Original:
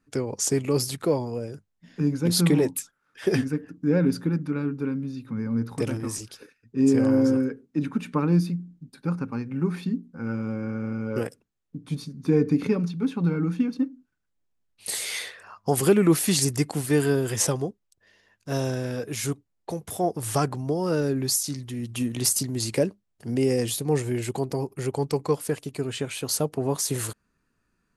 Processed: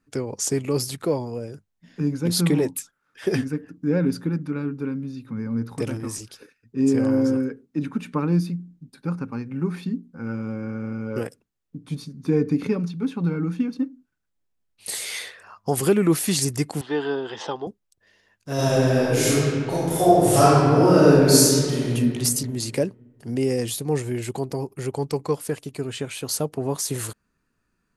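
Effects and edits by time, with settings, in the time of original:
16.81–17.67 speaker cabinet 340–3800 Hz, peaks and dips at 590 Hz -5 dB, 850 Hz +9 dB, 2300 Hz -10 dB, 3300 Hz +8 dB
18.54–21.92 reverb throw, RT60 2.2 s, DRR -10.5 dB

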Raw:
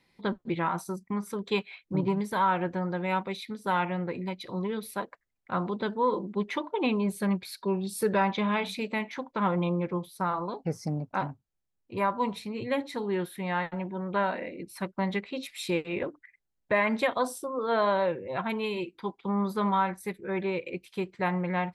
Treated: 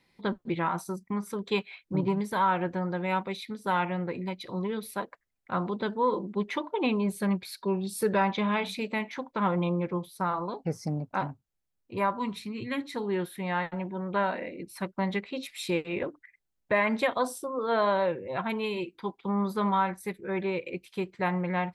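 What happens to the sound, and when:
12.19–12.95 band shelf 650 Hz -10 dB 1.2 oct

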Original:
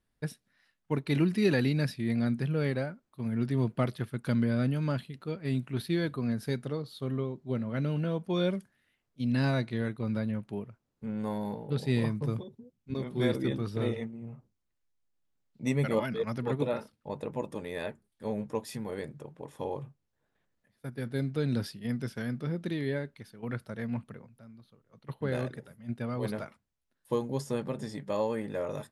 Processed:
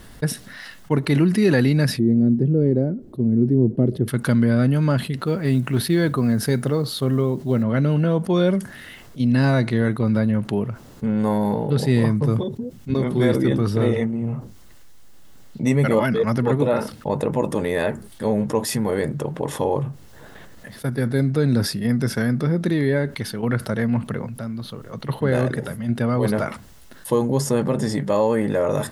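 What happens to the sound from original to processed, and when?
1.99–4.08 EQ curve 160 Hz 0 dB, 370 Hz +6 dB, 1100 Hz -23 dB
5.26–7.63 companded quantiser 8-bit
20.95–23 notch 3000 Hz, Q 8.6
whole clip: notch 2400 Hz, Q 12; dynamic EQ 3600 Hz, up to -5 dB, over -57 dBFS, Q 1.6; fast leveller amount 50%; gain +7.5 dB

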